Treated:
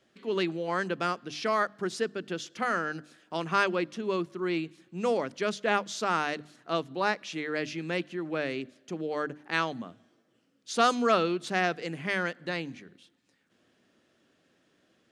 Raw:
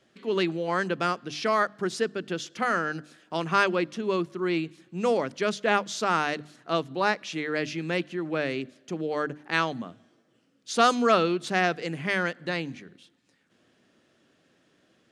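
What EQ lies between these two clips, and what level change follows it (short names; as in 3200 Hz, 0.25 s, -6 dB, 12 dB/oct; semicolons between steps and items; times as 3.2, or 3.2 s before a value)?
bell 140 Hz -2.5 dB 0.45 oct; -3.0 dB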